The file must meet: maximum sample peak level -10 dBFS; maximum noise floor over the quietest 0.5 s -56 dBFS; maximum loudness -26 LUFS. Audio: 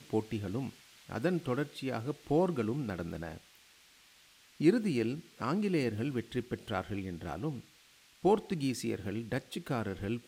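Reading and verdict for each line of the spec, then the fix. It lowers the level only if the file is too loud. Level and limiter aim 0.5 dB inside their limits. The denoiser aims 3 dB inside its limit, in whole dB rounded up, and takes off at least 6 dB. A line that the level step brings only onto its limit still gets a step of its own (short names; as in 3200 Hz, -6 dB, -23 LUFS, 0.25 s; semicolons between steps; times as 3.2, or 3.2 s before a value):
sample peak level -13.5 dBFS: OK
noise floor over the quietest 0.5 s -62 dBFS: OK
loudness -34.5 LUFS: OK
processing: none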